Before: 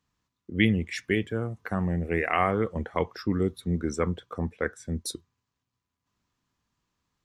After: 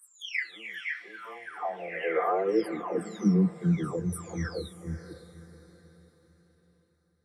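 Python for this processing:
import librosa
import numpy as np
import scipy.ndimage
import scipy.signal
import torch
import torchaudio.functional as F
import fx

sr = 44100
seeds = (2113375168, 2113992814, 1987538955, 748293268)

y = fx.spec_delay(x, sr, highs='early', ms=926)
y = fx.echo_diffused(y, sr, ms=558, feedback_pct=41, wet_db=-13.0)
y = fx.filter_sweep_highpass(y, sr, from_hz=1300.0, to_hz=71.0, start_s=0.97, end_s=4.54, q=4.3)
y = y * librosa.db_to_amplitude(-3.5)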